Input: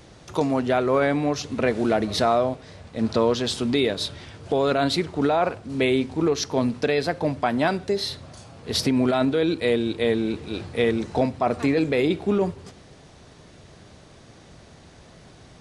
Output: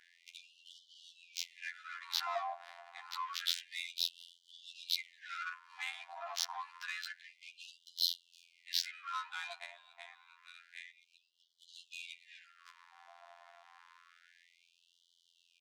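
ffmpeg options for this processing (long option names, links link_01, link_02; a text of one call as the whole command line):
ffmpeg -i in.wav -filter_complex "[0:a]aecho=1:1:2.9:0.63,alimiter=limit=-17.5dB:level=0:latency=1:release=156,asplit=3[link_01][link_02][link_03];[link_01]afade=type=out:start_time=9.58:duration=0.02[link_04];[link_02]acompressor=threshold=-34dB:ratio=6,afade=type=in:start_time=9.58:duration=0.02,afade=type=out:start_time=11.68:duration=0.02[link_05];[link_03]afade=type=in:start_time=11.68:duration=0.02[link_06];[link_04][link_05][link_06]amix=inputs=3:normalize=0,afftfilt=real='hypot(re,im)*cos(PI*b)':imag='0':win_size=2048:overlap=0.75,aeval=exprs='(tanh(5.62*val(0)+0.4)-tanh(0.4))/5.62':channel_layout=same,adynamicsmooth=sensitivity=7:basefreq=1300,afftfilt=real='re*gte(b*sr/1024,630*pow(2900/630,0.5+0.5*sin(2*PI*0.28*pts/sr)))':imag='im*gte(b*sr/1024,630*pow(2900/630,0.5+0.5*sin(2*PI*0.28*pts/sr)))':win_size=1024:overlap=0.75,volume=3.5dB" out.wav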